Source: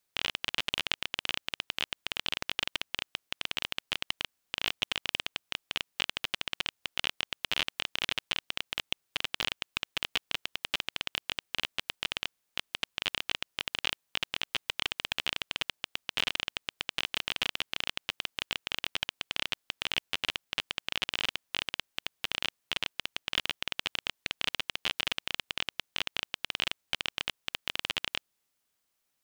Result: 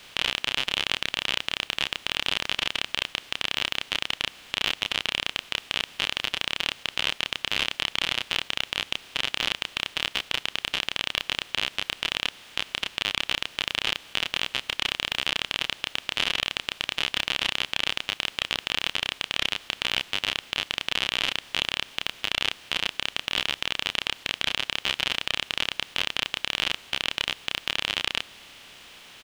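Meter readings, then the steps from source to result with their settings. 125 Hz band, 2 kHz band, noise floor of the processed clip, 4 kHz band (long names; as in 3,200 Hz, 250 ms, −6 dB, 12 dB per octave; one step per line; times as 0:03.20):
+6.5 dB, +6.5 dB, −53 dBFS, +6.5 dB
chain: compressor on every frequency bin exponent 0.4
parametric band 16,000 Hz −3.5 dB 0.58 octaves
double-tracking delay 30 ms −3.5 dB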